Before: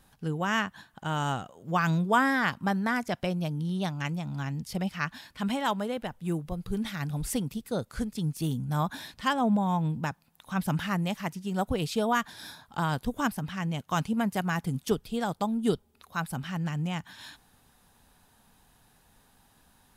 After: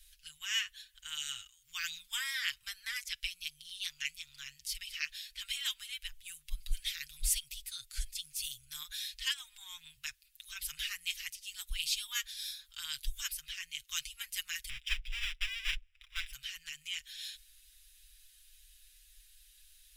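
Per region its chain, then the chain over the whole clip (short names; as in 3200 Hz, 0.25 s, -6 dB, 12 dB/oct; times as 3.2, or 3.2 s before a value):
14.69–16.33 half-waves squared off + polynomial smoothing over 25 samples
whole clip: inverse Chebyshev band-stop 200–590 Hz, stop band 80 dB; comb 6.5 ms, depth 65%; dynamic EQ 1400 Hz, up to -3 dB, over -53 dBFS, Q 1; gain +3.5 dB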